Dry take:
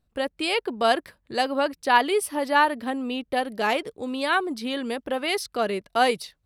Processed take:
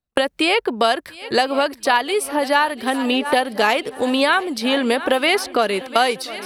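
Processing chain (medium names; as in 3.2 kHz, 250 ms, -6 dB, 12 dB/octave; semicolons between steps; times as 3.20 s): bass shelf 380 Hz -6.5 dB; gate -45 dBFS, range -38 dB; level rider gain up to 11.5 dB; on a send: multi-head delay 348 ms, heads second and third, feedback 44%, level -20.5 dB; on the sum: three bands compressed up and down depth 100%; trim -1 dB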